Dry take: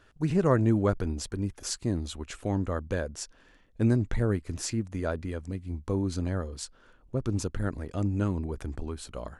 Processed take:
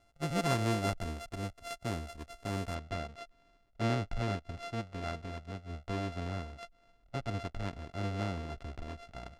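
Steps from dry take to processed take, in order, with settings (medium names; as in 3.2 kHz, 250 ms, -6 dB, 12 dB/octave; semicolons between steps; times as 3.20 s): sorted samples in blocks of 64 samples; low-pass 9.9 kHz 12 dB/octave, from 2.75 s 4.9 kHz; trim -7.5 dB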